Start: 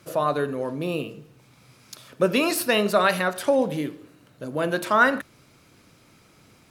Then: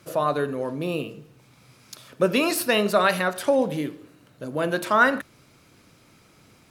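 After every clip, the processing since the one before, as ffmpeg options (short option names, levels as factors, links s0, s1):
-af anull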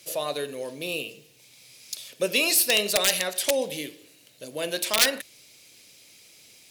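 -af "aeval=exprs='(mod(3.16*val(0)+1,2)-1)/3.16':c=same,equalizer=f=530:t=o:w=1.5:g=10,aexciter=amount=4.9:drive=9.6:freq=2000,volume=0.2"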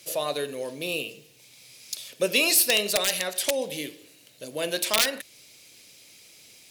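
-af "alimiter=limit=0.473:level=0:latency=1:release=363,volume=1.12"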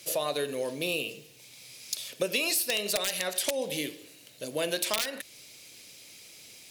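-af "acompressor=threshold=0.0447:ratio=6,volume=1.19"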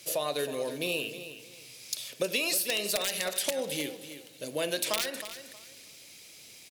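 -af "aecho=1:1:316|632|948:0.251|0.0628|0.0157,volume=0.891"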